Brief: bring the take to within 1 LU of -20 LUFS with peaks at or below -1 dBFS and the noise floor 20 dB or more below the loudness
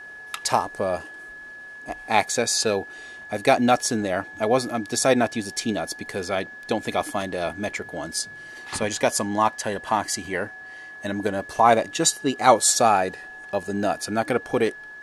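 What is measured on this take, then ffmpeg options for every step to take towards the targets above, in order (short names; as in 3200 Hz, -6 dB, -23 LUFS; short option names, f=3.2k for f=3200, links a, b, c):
steady tone 1700 Hz; tone level -38 dBFS; loudness -23.5 LUFS; peak -2.0 dBFS; loudness target -20.0 LUFS
-> -af "bandreject=f=1.7k:w=30"
-af "volume=3.5dB,alimiter=limit=-1dB:level=0:latency=1"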